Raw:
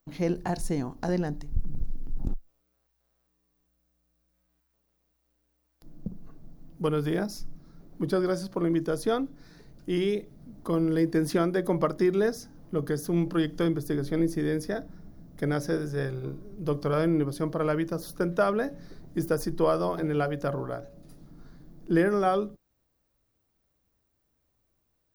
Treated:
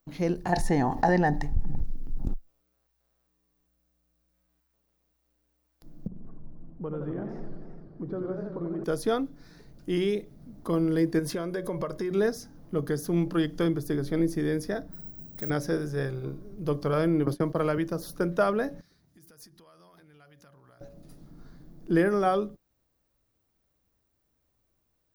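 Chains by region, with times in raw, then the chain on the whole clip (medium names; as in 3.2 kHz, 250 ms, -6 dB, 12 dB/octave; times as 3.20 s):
0.52–1.81 s: treble shelf 7 kHz -8 dB + small resonant body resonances 820/1800 Hz, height 15 dB, ringing for 20 ms + level flattener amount 50%
6.07–8.84 s: low-pass 1.1 kHz + compression 2:1, threshold -37 dBFS + modulated delay 86 ms, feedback 76%, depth 202 cents, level -7 dB
11.19–12.11 s: comb 1.9 ms, depth 42% + compression 4:1, threshold -28 dBFS
14.92–15.50 s: treble shelf 5.2 kHz +6.5 dB + compression 2:1, threshold -39 dBFS + careless resampling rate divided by 2×, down filtered, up zero stuff
17.26–17.78 s: gate -37 dBFS, range -21 dB + three bands compressed up and down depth 100%
18.81–20.81 s: high-pass 65 Hz + compression 8:1, threshold -35 dBFS + amplifier tone stack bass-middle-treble 5-5-5
whole clip: none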